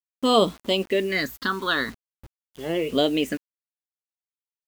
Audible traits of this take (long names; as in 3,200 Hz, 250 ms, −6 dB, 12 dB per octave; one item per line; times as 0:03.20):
phaser sweep stages 6, 0.45 Hz, lowest notch 600–1,700 Hz
a quantiser's noise floor 8 bits, dither none